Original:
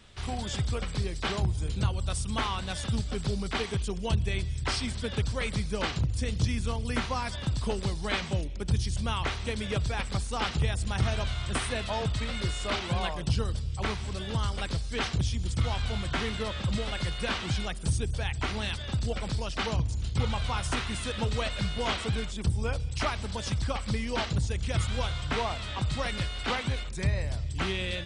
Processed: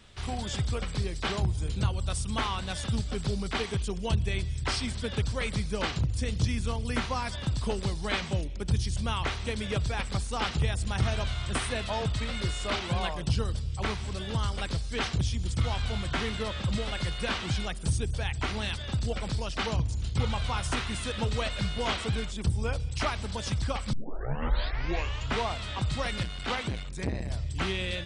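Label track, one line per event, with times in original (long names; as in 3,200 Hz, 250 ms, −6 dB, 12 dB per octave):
23.930000	23.930000	tape start 1.46 s
26.230000	27.300000	saturating transformer saturates under 360 Hz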